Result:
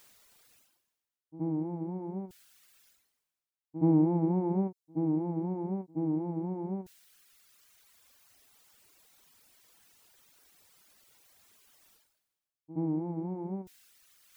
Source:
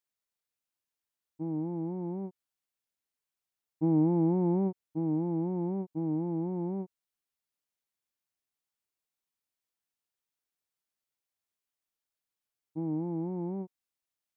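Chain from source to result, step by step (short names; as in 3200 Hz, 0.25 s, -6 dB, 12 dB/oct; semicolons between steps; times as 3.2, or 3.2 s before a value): pre-echo 72 ms -14.5 dB; reverse; upward compressor, threshold -40 dBFS; reverse; reverb removal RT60 1.9 s; gain +3 dB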